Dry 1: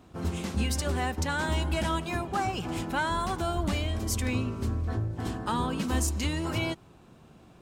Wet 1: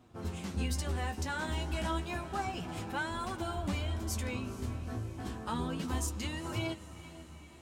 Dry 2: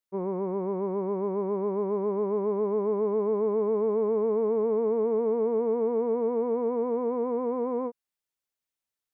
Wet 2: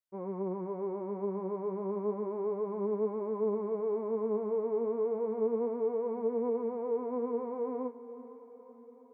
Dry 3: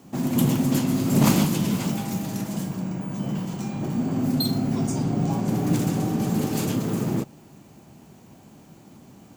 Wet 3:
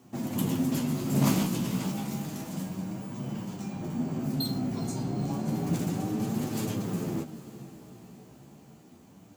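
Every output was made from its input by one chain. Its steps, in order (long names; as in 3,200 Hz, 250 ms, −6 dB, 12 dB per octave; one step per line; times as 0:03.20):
feedback delay with all-pass diffusion 454 ms, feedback 61%, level −15 dB
flanger 0.31 Hz, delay 8 ms, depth 9 ms, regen +29%
level −3 dB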